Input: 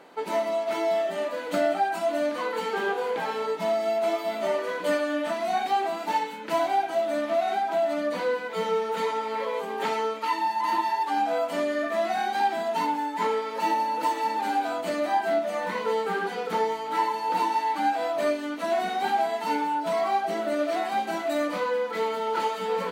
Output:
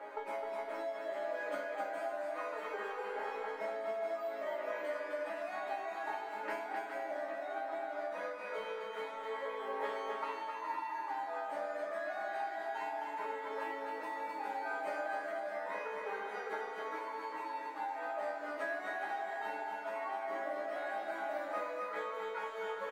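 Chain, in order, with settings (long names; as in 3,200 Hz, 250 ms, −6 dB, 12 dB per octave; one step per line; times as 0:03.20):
high-pass filter 200 Hz 24 dB per octave
flat-topped bell 920 Hz +14 dB 2.9 octaves
downward compressor 6 to 1, threshold −25 dBFS, peak gain reduction 17.5 dB
resonators tuned to a chord G#3 sus4, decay 0.45 s
on a send: bouncing-ball delay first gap 260 ms, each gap 0.6×, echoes 5
on the sum: level +10.5 dB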